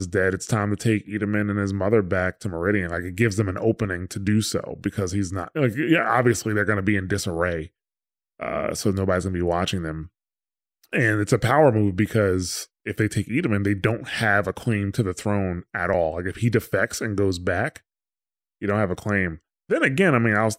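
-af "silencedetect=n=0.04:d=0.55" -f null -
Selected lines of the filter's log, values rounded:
silence_start: 7.64
silence_end: 8.42 | silence_duration: 0.78
silence_start: 10.03
silence_end: 10.93 | silence_duration: 0.90
silence_start: 17.77
silence_end: 18.62 | silence_duration: 0.86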